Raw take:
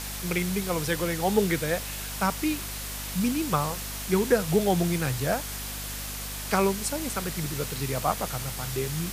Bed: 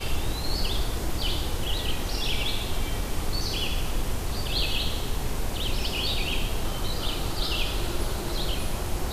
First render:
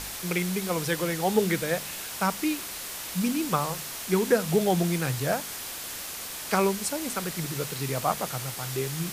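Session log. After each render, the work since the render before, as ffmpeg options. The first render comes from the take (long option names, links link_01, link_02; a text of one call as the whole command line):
ffmpeg -i in.wav -af "bandreject=frequency=50:width_type=h:width=4,bandreject=frequency=100:width_type=h:width=4,bandreject=frequency=150:width_type=h:width=4,bandreject=frequency=200:width_type=h:width=4,bandreject=frequency=250:width_type=h:width=4" out.wav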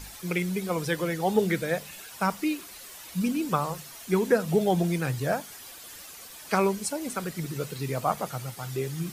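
ffmpeg -i in.wav -af "afftdn=noise_reduction=11:noise_floor=-37" out.wav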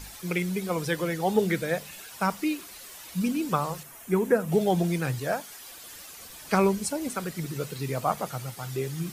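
ffmpeg -i in.wav -filter_complex "[0:a]asettb=1/sr,asplit=3[link_01][link_02][link_03];[link_01]atrim=end=3.834[link_04];[link_02]atrim=start=3.83:end=4.52,asetpts=PTS-STARTPTS,afade=type=in:duration=0.004:curve=qsin,afade=type=out:start_time=0.686:duration=0.004:curve=qsin,equalizer=frequency=4400:width_type=o:width=1.1:gain=-12[link_05];[link_03]atrim=start=4.516[link_06];[link_04][link_05]acrossfade=duration=0.004:curve1=hsin:curve2=qsin[link_07];[link_07][link_06]acrossfade=duration=0.004:curve1=qsin:curve2=hsin,asettb=1/sr,asplit=3[link_08][link_09][link_10];[link_08]atrim=end=5.204[link_11];[link_09]atrim=start=5.2:end=5.7,asetpts=PTS-STARTPTS,afade=type=in:duration=0.004:curve=qsin,afade=type=out:start_time=0.496:duration=0.004:curve=qsin,equalizer=frequency=86:width=0.37:gain=-7[link_12];[link_10]atrim=start=5.696[link_13];[link_11][link_12]acrossfade=duration=0.004:curve1=hsin:curve2=qsin[link_14];[link_14][link_13]acrossfade=duration=0.004:curve1=qsin:curve2=hsin,asettb=1/sr,asplit=3[link_15][link_16][link_17];[link_15]atrim=end=6.204[link_18];[link_16]atrim=start=6.2:end=7.08,asetpts=PTS-STARTPTS,afade=type=in:duration=0.004:curve=qsin,afade=type=out:start_time=0.876:duration=0.004:curve=qsin,lowshelf=frequency=190:gain=8[link_19];[link_17]atrim=start=7.076[link_20];[link_18][link_19]acrossfade=duration=0.004:curve1=hsin:curve2=qsin[link_21];[link_21][link_20]acrossfade=duration=0.004:curve1=qsin:curve2=hsin" out.wav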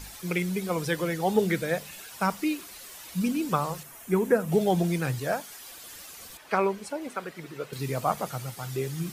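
ffmpeg -i in.wav -filter_complex "[0:a]asettb=1/sr,asplit=3[link_01][link_02][link_03];[link_01]atrim=end=6.374[link_04];[link_02]atrim=start=6.37:end=7.73,asetpts=PTS-STARTPTS,afade=type=in:duration=0.004:curve=qsin,afade=type=out:start_time=1.356:duration=0.004:curve=qsin,bass=frequency=250:gain=-14,treble=frequency=4000:gain=-13[link_05];[link_03]atrim=start=7.726[link_06];[link_04][link_05]acrossfade=duration=0.004:curve1=hsin:curve2=qsin[link_07];[link_07][link_06]acrossfade=duration=0.004:curve1=qsin:curve2=hsin" out.wav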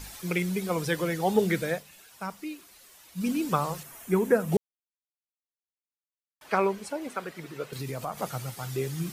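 ffmpeg -i in.wav -filter_complex "[0:a]asettb=1/sr,asplit=3[link_01][link_02][link_03];[link_01]atrim=end=7.684[link_04];[link_02]atrim=start=7.68:end=8.22,asetpts=PTS-STARTPTS,afade=type=in:duration=0.004:curve=qsin,afade=type=out:start_time=0.536:duration=0.004:curve=qsin,acompressor=threshold=-31dB:ratio=3:attack=3.2:release=140:knee=1:detection=peak[link_05];[link_03]atrim=start=8.216[link_06];[link_04][link_05]acrossfade=duration=0.004:curve1=hsin:curve2=qsin[link_07];[link_07][link_06]acrossfade=duration=0.004:curve1=qsin:curve2=hsin,asplit=5[link_08][link_09][link_10][link_11][link_12];[link_08]atrim=end=1.83,asetpts=PTS-STARTPTS,afade=type=out:start_time=1.68:duration=0.15:silence=0.334965[link_13];[link_09]atrim=start=1.83:end=3.15,asetpts=PTS-STARTPTS,volume=-9.5dB[link_14];[link_10]atrim=start=3.15:end=4.57,asetpts=PTS-STARTPTS,afade=type=in:duration=0.15:silence=0.334965,afade=type=out:start_time=1.416:duration=0.004:curve=hsin[link_15];[link_11]atrim=start=4.57:end=6.41,asetpts=PTS-STARTPTS,volume=0[link_16];[link_12]atrim=start=6.41,asetpts=PTS-STARTPTS,afade=type=in:duration=0.004:curve=hsin[link_17];[link_13][link_14][link_15][link_16][link_17]concat=n=5:v=0:a=1" out.wav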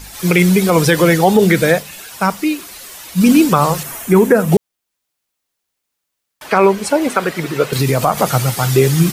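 ffmpeg -i in.wav -af "dynaudnorm=framelen=130:gausssize=3:maxgain=13dB,alimiter=level_in=7dB:limit=-1dB:release=50:level=0:latency=1" out.wav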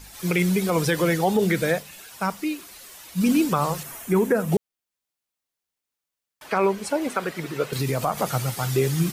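ffmpeg -i in.wav -af "volume=-10dB" out.wav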